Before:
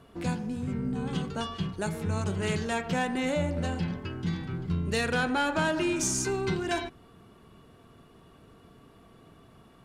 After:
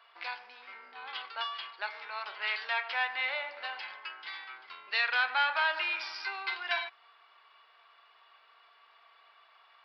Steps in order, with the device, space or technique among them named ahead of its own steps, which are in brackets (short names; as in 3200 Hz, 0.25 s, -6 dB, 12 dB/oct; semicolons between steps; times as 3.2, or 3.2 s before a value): musical greeting card (downsampling 11025 Hz; HPF 870 Hz 24 dB/oct; bell 2200 Hz +5 dB 0.42 oct); gain +1.5 dB